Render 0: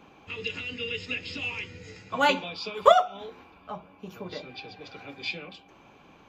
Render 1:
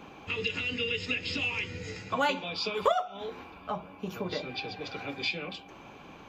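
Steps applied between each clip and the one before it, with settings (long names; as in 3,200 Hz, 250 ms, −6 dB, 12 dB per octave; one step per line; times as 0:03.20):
downward compressor 2.5 to 1, threshold −35 dBFS, peak gain reduction 15.5 dB
level +5.5 dB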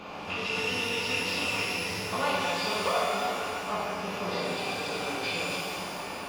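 compressor on every frequency bin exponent 0.6
reverb with rising layers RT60 2.1 s, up +12 semitones, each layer −8 dB, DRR −6 dB
level −8.5 dB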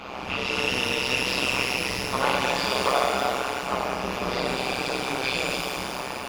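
amplitude modulation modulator 130 Hz, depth 85%
level +8.5 dB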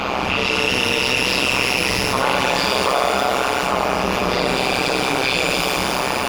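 envelope flattener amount 70%
level +3 dB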